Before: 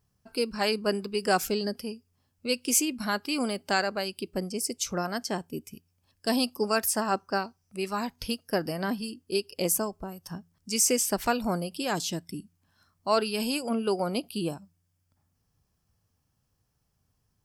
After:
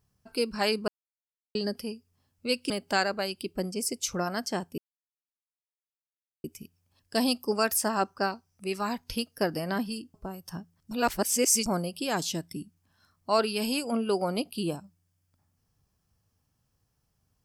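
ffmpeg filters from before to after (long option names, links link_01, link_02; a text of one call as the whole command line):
ffmpeg -i in.wav -filter_complex "[0:a]asplit=8[link_01][link_02][link_03][link_04][link_05][link_06][link_07][link_08];[link_01]atrim=end=0.88,asetpts=PTS-STARTPTS,afade=type=out:start_time=0.876:duration=0.004:curve=hsin[link_09];[link_02]atrim=start=0.88:end=1.55,asetpts=PTS-STARTPTS,volume=0[link_10];[link_03]atrim=start=1.55:end=2.702,asetpts=PTS-STARTPTS,afade=type=in:duration=0.004:curve=hsin[link_11];[link_04]atrim=start=3.478:end=5.56,asetpts=PTS-STARTPTS,afade=type=out:start_time=2.078:duration=0.004:curve=hsin,apad=pad_dur=1.66[link_12];[link_05]atrim=start=5.56:end=9.262,asetpts=PTS-STARTPTS,afade=type=in:duration=0.004:curve=hsin[link_13];[link_06]atrim=start=9.918:end=10.692[link_14];[link_07]atrim=start=10.688:end=11.442,asetpts=PTS-STARTPTS,areverse[link_15];[link_08]atrim=start=11.438[link_16];[link_09][link_10][link_11]concat=n=3:v=0:a=1[link_17];[link_12][link_13]concat=n=2:v=0:a=1[link_18];[link_17][link_18]acrossfade=duration=0.004:curve1=hsin:curve2=hsin[link_19];[link_19][link_14]acrossfade=duration=0.004:curve1=hsin:curve2=hsin[link_20];[link_20][link_15]acrossfade=duration=0.004:curve1=hsin:curve2=hsin[link_21];[link_21][link_16]acrossfade=duration=0.004:curve1=hsin:curve2=hsin" out.wav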